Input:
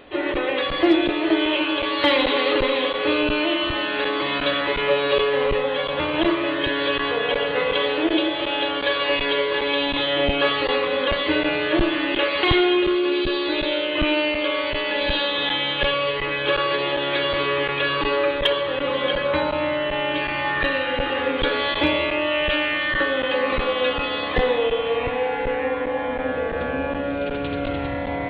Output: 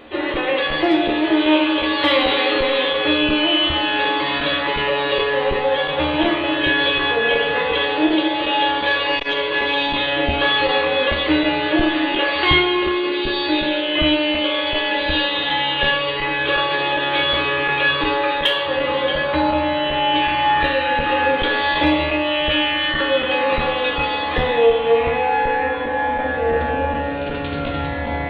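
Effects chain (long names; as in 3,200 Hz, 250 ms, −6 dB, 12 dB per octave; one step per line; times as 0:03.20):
0:18.22–0:18.66: spectral tilt +1.5 dB per octave
in parallel at −0.5 dB: brickwall limiter −14 dBFS, peak gain reduction 8 dB
on the sum: tuned comb filter 77 Hz, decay 0.4 s, harmonics all, mix 90%
0:08.87–0:09.92: saturating transformer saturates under 410 Hz
level +7.5 dB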